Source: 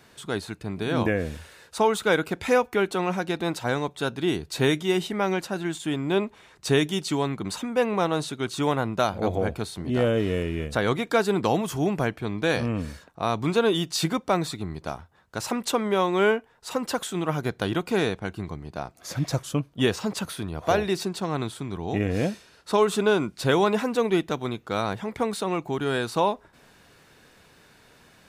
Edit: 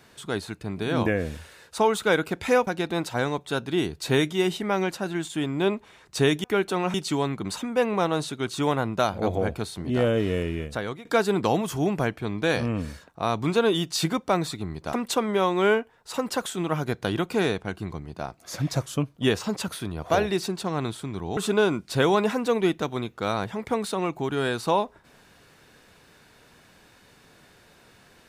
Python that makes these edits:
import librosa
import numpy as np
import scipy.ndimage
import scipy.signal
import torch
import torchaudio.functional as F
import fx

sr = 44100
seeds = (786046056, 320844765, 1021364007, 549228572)

y = fx.edit(x, sr, fx.move(start_s=2.67, length_s=0.5, to_s=6.94),
    fx.fade_out_to(start_s=10.5, length_s=0.55, floor_db=-19.0),
    fx.cut(start_s=14.93, length_s=0.57),
    fx.cut(start_s=21.94, length_s=0.92), tone=tone)